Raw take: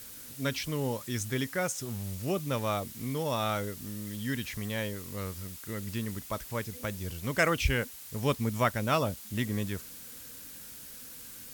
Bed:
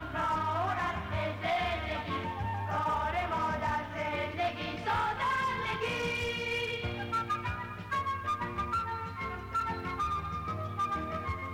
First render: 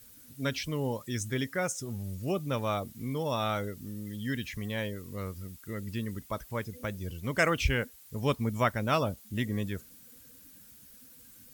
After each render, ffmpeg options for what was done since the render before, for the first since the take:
-af "afftdn=nr=11:nf=-46"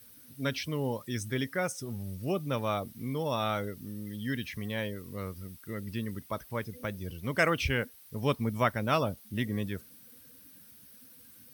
-af "highpass=82,equalizer=f=7.1k:t=o:w=0.21:g=-13"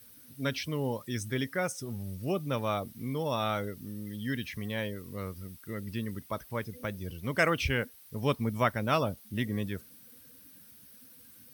-af anull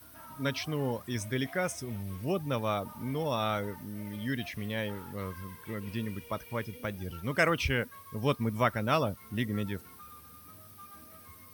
-filter_complex "[1:a]volume=-19.5dB[a];[0:a][a]amix=inputs=2:normalize=0"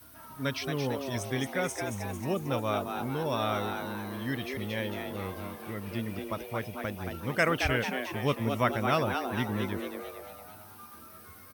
-filter_complex "[0:a]asplit=8[a][b][c][d][e][f][g][h];[b]adelay=224,afreqshift=130,volume=-6dB[i];[c]adelay=448,afreqshift=260,volume=-11.5dB[j];[d]adelay=672,afreqshift=390,volume=-17dB[k];[e]adelay=896,afreqshift=520,volume=-22.5dB[l];[f]adelay=1120,afreqshift=650,volume=-28.1dB[m];[g]adelay=1344,afreqshift=780,volume=-33.6dB[n];[h]adelay=1568,afreqshift=910,volume=-39.1dB[o];[a][i][j][k][l][m][n][o]amix=inputs=8:normalize=0"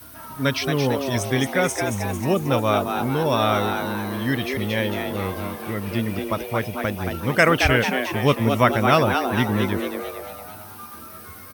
-af "volume=10dB,alimiter=limit=-3dB:level=0:latency=1"

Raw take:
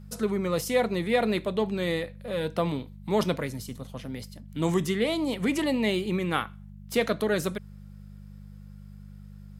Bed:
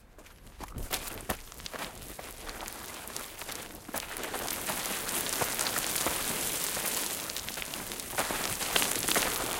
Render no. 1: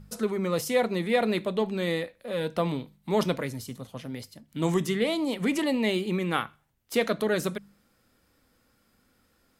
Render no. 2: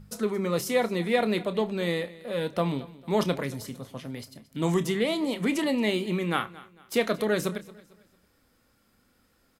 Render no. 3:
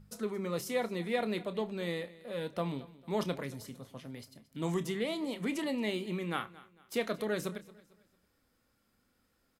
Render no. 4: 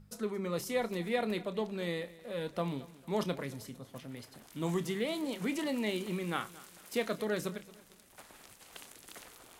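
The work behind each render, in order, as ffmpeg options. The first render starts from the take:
-af "bandreject=f=50:t=h:w=4,bandreject=f=100:t=h:w=4,bandreject=f=150:t=h:w=4,bandreject=f=200:t=h:w=4"
-filter_complex "[0:a]asplit=2[a][b];[b]adelay=29,volume=-13dB[c];[a][c]amix=inputs=2:normalize=0,aecho=1:1:225|450|675:0.106|0.0371|0.013"
-af "volume=-8dB"
-filter_complex "[1:a]volume=-23dB[a];[0:a][a]amix=inputs=2:normalize=0"

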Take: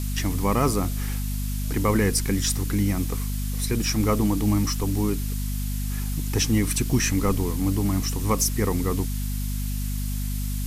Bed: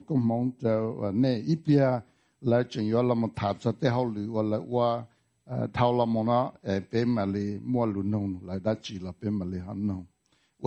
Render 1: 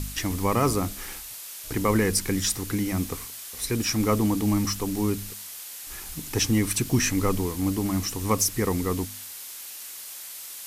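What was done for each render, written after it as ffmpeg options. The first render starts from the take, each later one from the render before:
-af "bandreject=f=50:t=h:w=4,bandreject=f=100:t=h:w=4,bandreject=f=150:t=h:w=4,bandreject=f=200:t=h:w=4,bandreject=f=250:t=h:w=4"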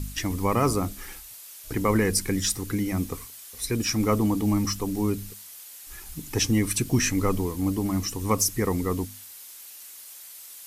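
-af "afftdn=nr=7:nf=-40"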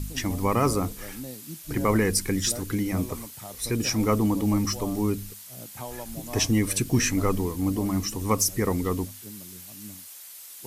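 -filter_complex "[1:a]volume=-14.5dB[a];[0:a][a]amix=inputs=2:normalize=0"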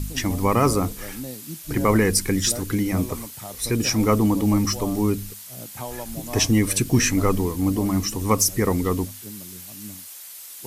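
-af "volume=4dB"

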